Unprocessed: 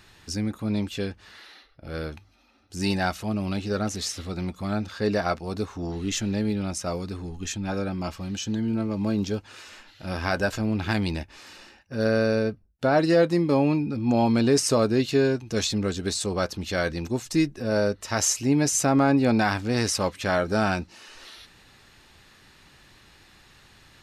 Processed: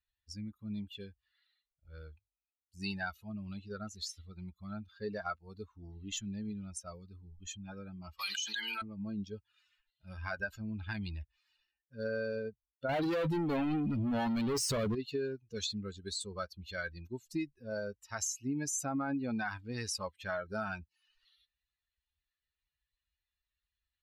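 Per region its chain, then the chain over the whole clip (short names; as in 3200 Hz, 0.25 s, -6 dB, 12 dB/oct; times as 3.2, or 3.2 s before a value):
8.19–8.82 HPF 1100 Hz + high shelf 4100 Hz +6.5 dB + fast leveller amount 100%
12.89–14.95 de-esser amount 55% + low shelf 79 Hz +5 dB + sample leveller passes 5
whole clip: per-bin expansion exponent 2; limiter -22 dBFS; compressor 2.5:1, threshold -34 dBFS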